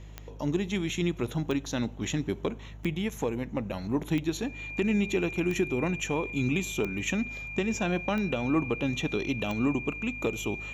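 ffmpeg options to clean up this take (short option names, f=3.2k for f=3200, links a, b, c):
-af "adeclick=t=4,bandreject=f=51.7:t=h:w=4,bandreject=f=103.4:t=h:w=4,bandreject=f=155.1:t=h:w=4,bandreject=f=2.4k:w=30"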